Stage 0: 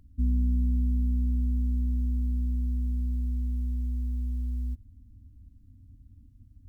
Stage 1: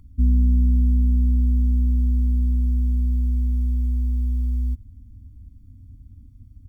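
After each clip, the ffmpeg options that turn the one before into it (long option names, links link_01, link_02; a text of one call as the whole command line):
ffmpeg -i in.wav -af "aecho=1:1:0.9:0.76,volume=3.5dB" out.wav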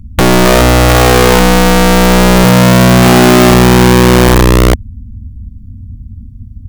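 ffmpeg -i in.wav -af "lowshelf=frequency=280:width_type=q:width=3:gain=9,aeval=exprs='(mod(2.66*val(0)+1,2)-1)/2.66':channel_layout=same,volume=7dB" out.wav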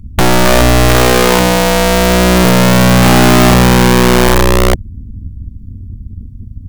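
ffmpeg -i in.wav -af "aeval=exprs='0.891*(cos(1*acos(clip(val(0)/0.891,-1,1)))-cos(1*PI/2))+0.141*(cos(3*acos(clip(val(0)/0.891,-1,1)))-cos(3*PI/2))+0.126*(cos(5*acos(clip(val(0)/0.891,-1,1)))-cos(5*PI/2))+0.224*(cos(6*acos(clip(val(0)/0.891,-1,1)))-cos(6*PI/2))':channel_layout=same,volume=-1.5dB" out.wav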